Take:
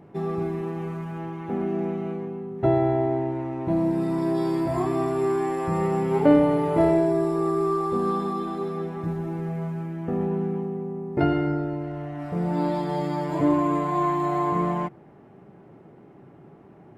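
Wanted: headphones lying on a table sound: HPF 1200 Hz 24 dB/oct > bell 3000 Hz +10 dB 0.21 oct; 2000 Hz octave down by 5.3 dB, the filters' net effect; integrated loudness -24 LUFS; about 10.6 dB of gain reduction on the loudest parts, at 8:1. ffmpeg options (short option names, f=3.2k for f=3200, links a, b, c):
-af "equalizer=f=2k:t=o:g=-7,acompressor=threshold=-23dB:ratio=8,highpass=f=1.2k:w=0.5412,highpass=f=1.2k:w=1.3066,equalizer=f=3k:t=o:w=0.21:g=10,volume=19.5dB"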